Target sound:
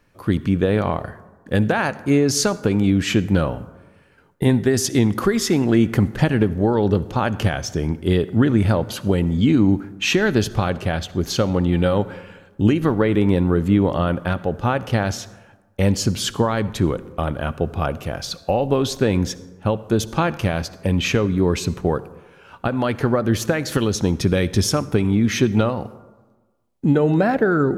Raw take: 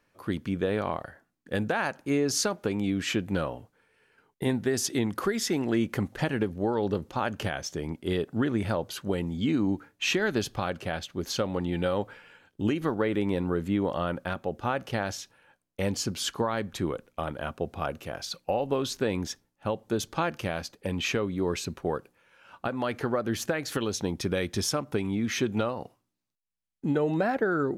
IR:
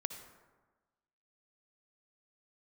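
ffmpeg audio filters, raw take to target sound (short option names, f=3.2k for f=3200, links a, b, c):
-filter_complex "[0:a]lowshelf=f=180:g=10.5,asplit=2[a][b];[1:a]atrim=start_sample=2205[c];[b][c]afir=irnorm=-1:irlink=0,volume=-6dB[d];[a][d]amix=inputs=2:normalize=0,volume=3.5dB"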